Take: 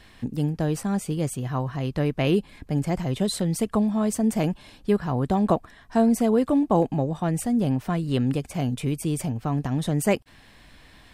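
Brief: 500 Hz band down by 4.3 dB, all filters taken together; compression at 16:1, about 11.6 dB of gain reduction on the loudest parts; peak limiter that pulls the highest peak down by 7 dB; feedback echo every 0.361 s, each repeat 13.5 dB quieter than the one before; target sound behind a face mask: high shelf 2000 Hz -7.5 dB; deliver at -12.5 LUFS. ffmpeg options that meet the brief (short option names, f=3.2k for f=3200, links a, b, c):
-af "equalizer=f=500:t=o:g=-5,acompressor=threshold=-29dB:ratio=16,alimiter=level_in=1.5dB:limit=-24dB:level=0:latency=1,volume=-1.5dB,highshelf=f=2k:g=-7.5,aecho=1:1:361|722:0.211|0.0444,volume=23.5dB"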